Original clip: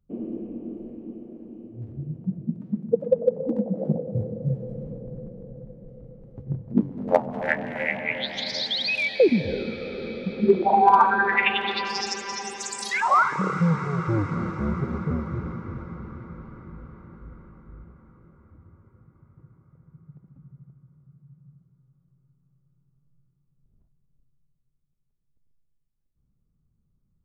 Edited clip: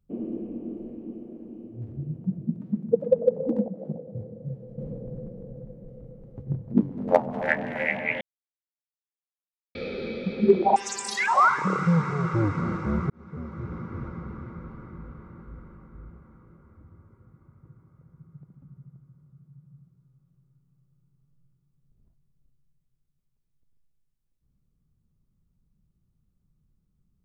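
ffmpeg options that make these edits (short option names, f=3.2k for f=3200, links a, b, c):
-filter_complex "[0:a]asplit=7[a][b][c][d][e][f][g];[a]atrim=end=3.682[h];[b]atrim=start=3.678:end=4.782,asetpts=PTS-STARTPTS,volume=-9dB[i];[c]atrim=start=4.778:end=8.21,asetpts=PTS-STARTPTS,afade=t=out:st=3.428:d=0.004:c=hsin[j];[d]atrim=start=8.21:end=9.75,asetpts=PTS-STARTPTS,volume=0[k];[e]atrim=start=9.75:end=10.762,asetpts=PTS-STARTPTS,afade=t=in:d=0.004:c=hsin[l];[f]atrim=start=12.498:end=14.84,asetpts=PTS-STARTPTS,afade=t=out:st=2.338:d=0.004:c=hsin[m];[g]atrim=start=14.84,asetpts=PTS-STARTPTS,afade=t=in:d=0.93[n];[h][i]acrossfade=d=0.004:c1=hsin:c2=hsin[o];[j][k][l]concat=n=3:v=0:a=1[p];[o][p]acrossfade=d=0.004:c1=hsin:c2=hsin[q];[m][n]concat=n=2:v=0:a=1[r];[q][r]acrossfade=d=0.004:c1=hsin:c2=hsin"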